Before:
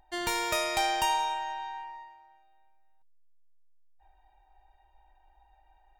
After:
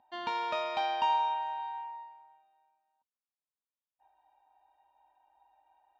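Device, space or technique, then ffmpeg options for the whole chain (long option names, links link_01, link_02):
kitchen radio: -af "highpass=210,equalizer=frequency=250:width_type=q:width=4:gain=7,equalizer=frequency=370:width_type=q:width=4:gain=-8,equalizer=frequency=580:width_type=q:width=4:gain=3,equalizer=frequency=990:width_type=q:width=4:gain=7,equalizer=frequency=2000:width_type=q:width=4:gain=-8,lowpass=frequency=3800:width=0.5412,lowpass=frequency=3800:width=1.3066,volume=-4.5dB"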